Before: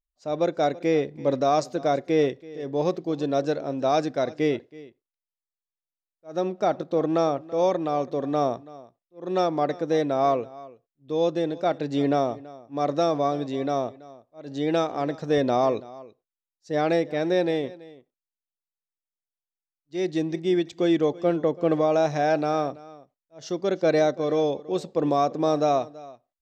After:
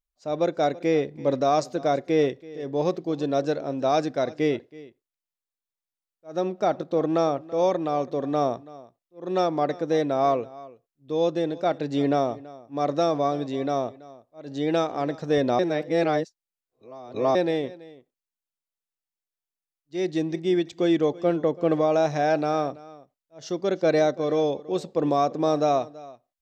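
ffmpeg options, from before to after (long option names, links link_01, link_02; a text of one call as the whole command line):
ffmpeg -i in.wav -filter_complex "[0:a]asplit=3[link_01][link_02][link_03];[link_01]atrim=end=15.592[link_04];[link_02]atrim=start=15.588:end=17.352,asetpts=PTS-STARTPTS,areverse[link_05];[link_03]atrim=start=17.348[link_06];[link_04][link_05]acrossfade=duration=0.004:curve1=hsin:curve2=hsin[link_07];[link_07][link_06]acrossfade=duration=0.004:curve1=hsin:curve2=hsin" out.wav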